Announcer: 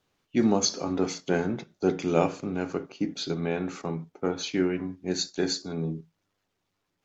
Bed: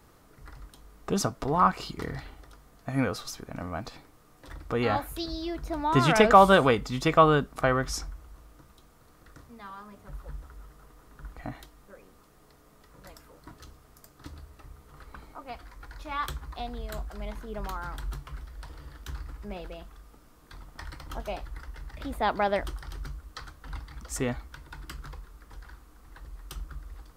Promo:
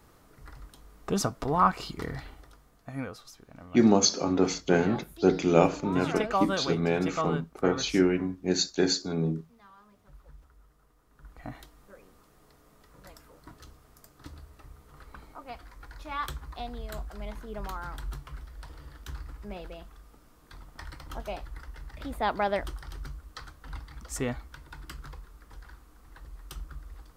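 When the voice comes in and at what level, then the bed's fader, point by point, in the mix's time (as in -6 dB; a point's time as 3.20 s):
3.40 s, +2.5 dB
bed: 2.33 s -0.5 dB
3.22 s -11.5 dB
11.05 s -11.5 dB
11.55 s -1.5 dB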